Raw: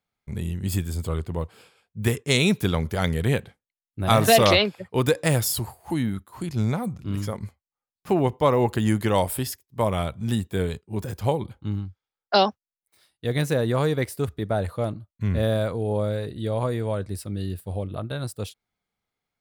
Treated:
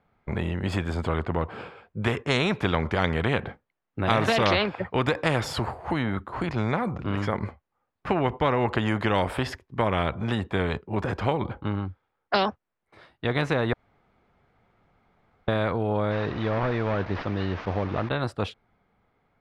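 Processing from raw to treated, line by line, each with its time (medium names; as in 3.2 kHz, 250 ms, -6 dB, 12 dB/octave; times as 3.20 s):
13.73–15.48 s: room tone
16.11–18.09 s: one-bit delta coder 32 kbps, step -43 dBFS
whole clip: low-pass 1.5 kHz 12 dB/octave; compression 1.5:1, threshold -26 dBFS; spectrum-flattening compressor 2:1; trim +5 dB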